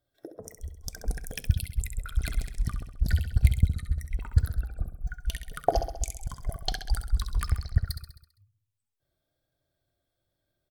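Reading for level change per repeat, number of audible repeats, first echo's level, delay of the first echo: -5.0 dB, 6, -8.5 dB, 66 ms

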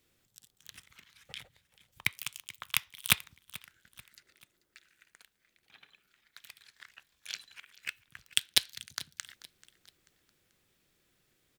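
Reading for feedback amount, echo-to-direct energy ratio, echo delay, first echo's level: 41%, -19.0 dB, 0.437 s, -20.0 dB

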